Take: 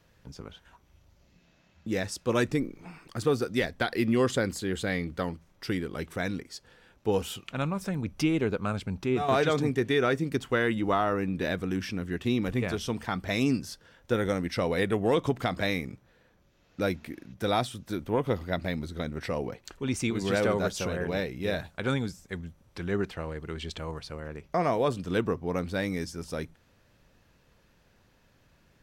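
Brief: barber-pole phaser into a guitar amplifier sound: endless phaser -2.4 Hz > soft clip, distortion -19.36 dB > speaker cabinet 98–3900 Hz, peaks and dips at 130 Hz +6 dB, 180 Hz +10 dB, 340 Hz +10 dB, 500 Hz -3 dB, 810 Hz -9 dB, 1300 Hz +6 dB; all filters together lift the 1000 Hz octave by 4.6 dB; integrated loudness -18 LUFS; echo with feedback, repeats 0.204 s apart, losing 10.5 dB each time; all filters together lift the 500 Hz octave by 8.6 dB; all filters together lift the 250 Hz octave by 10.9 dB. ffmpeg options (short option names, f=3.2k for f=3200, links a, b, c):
-filter_complex "[0:a]equalizer=f=250:t=o:g=3.5,equalizer=f=500:t=o:g=7.5,equalizer=f=1k:t=o:g=3.5,aecho=1:1:204|408|612:0.299|0.0896|0.0269,asplit=2[a][b];[b]afreqshift=-2.4[c];[a][c]amix=inputs=2:normalize=1,asoftclip=threshold=-13.5dB,highpass=98,equalizer=f=130:t=q:w=4:g=6,equalizer=f=180:t=q:w=4:g=10,equalizer=f=340:t=q:w=4:g=10,equalizer=f=500:t=q:w=4:g=-3,equalizer=f=810:t=q:w=4:g=-9,equalizer=f=1.3k:t=q:w=4:g=6,lowpass=f=3.9k:w=0.5412,lowpass=f=3.9k:w=1.3066,volume=7dB"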